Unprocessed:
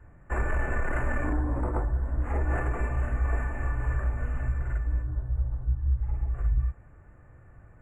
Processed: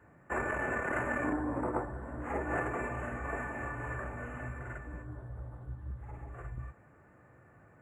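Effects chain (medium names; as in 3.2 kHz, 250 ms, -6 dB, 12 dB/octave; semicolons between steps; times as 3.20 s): high-pass 170 Hz 12 dB/octave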